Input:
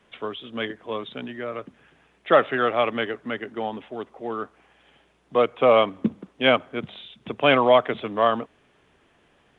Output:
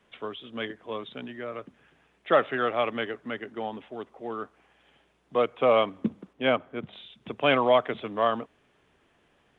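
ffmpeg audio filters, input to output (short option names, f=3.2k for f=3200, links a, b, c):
-filter_complex "[0:a]asettb=1/sr,asplit=3[a][b][c];[a]atrim=end=6.334[d];[b]atrim=start=6.33:end=6.93,asetpts=PTS-STARTPTS,afade=t=in:d=0.004:c=qsin,afade=t=out:st=0.596:d=0.004:c=qsin,highshelf=f=3.2k:g=-10[e];[c]atrim=start=6.926[f];[d][e]acrossfade=d=0.004:c1=hsin:c2=qsin[g];[g][f]acrossfade=d=0.004:c1=qsin:c2=hsin,volume=-4.5dB"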